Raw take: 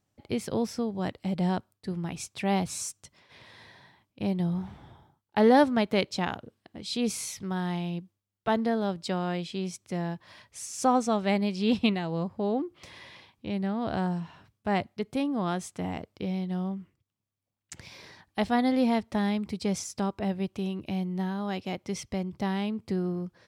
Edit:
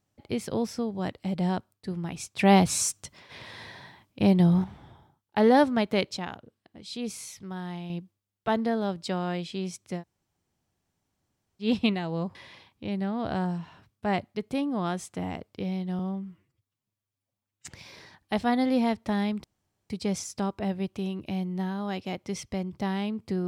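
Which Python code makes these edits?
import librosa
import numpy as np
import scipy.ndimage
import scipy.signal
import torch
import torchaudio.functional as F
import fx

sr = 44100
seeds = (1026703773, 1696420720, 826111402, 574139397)

y = fx.edit(x, sr, fx.clip_gain(start_s=2.39, length_s=2.25, db=8.0),
    fx.clip_gain(start_s=6.17, length_s=1.73, db=-5.5),
    fx.room_tone_fill(start_s=9.99, length_s=1.65, crossfade_s=0.1),
    fx.cut(start_s=12.35, length_s=0.62),
    fx.stretch_span(start_s=16.61, length_s=1.12, factor=1.5),
    fx.insert_room_tone(at_s=19.5, length_s=0.46), tone=tone)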